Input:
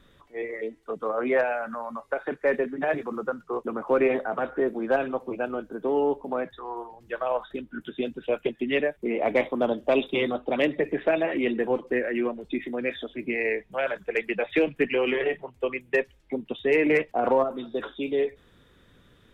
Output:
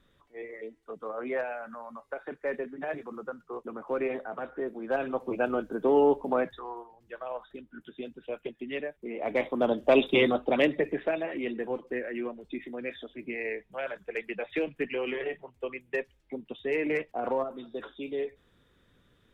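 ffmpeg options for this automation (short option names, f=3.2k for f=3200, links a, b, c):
-af "volume=15dB,afade=t=in:st=4.83:d=0.66:silence=0.298538,afade=t=out:st=6.4:d=0.45:silence=0.251189,afade=t=in:st=9.14:d=1.03:silence=0.223872,afade=t=out:st=10.17:d=1.02:silence=0.298538"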